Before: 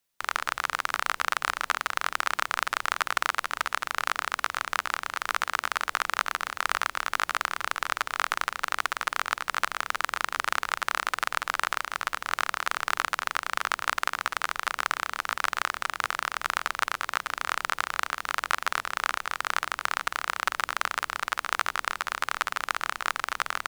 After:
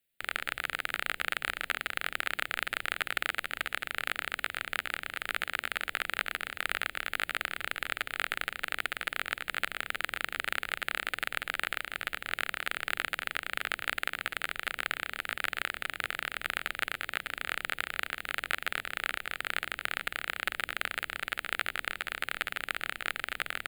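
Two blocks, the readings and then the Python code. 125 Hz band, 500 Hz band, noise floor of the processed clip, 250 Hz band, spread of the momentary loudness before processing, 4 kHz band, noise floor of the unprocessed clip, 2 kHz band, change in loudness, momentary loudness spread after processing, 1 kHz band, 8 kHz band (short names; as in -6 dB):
0.0 dB, -4.0 dB, -57 dBFS, -1.0 dB, 2 LU, -2.5 dB, -55 dBFS, -3.0 dB, -4.5 dB, 2 LU, -11.0 dB, -8.0 dB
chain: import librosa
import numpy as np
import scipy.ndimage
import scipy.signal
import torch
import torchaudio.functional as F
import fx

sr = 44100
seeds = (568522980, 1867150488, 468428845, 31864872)

y = fx.fixed_phaser(x, sr, hz=2500.0, stages=4)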